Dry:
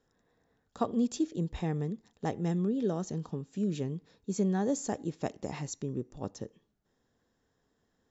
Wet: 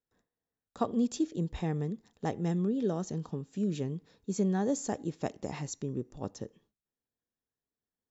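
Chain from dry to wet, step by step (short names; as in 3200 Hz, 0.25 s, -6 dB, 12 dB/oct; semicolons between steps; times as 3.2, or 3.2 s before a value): gate with hold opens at -59 dBFS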